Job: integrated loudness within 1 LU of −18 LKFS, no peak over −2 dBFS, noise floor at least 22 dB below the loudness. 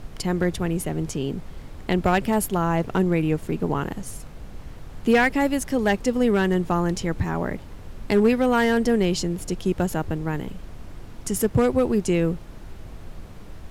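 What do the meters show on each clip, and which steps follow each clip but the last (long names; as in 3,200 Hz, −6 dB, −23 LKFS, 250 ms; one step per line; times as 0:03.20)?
share of clipped samples 0.3%; peaks flattened at −11.0 dBFS; background noise floor −40 dBFS; target noise floor −45 dBFS; integrated loudness −23.0 LKFS; sample peak −11.0 dBFS; target loudness −18.0 LKFS
→ clipped peaks rebuilt −11 dBFS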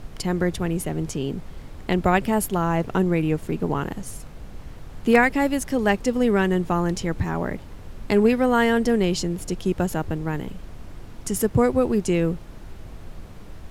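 share of clipped samples 0.0%; background noise floor −40 dBFS; target noise floor −45 dBFS
→ noise reduction from a noise print 6 dB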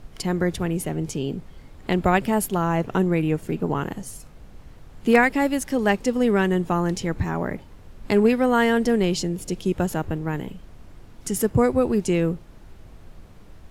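background noise floor −46 dBFS; integrated loudness −23.0 LKFS; sample peak −2.0 dBFS; target loudness −18.0 LKFS
→ level +5 dB
brickwall limiter −2 dBFS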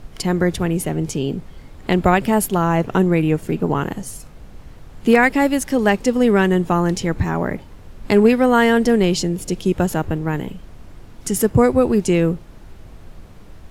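integrated loudness −18.0 LKFS; sample peak −2.0 dBFS; background noise floor −41 dBFS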